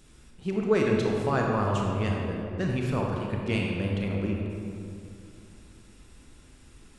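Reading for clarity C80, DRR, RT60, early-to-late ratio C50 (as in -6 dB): 1.5 dB, -1.0 dB, 2.5 s, 0.5 dB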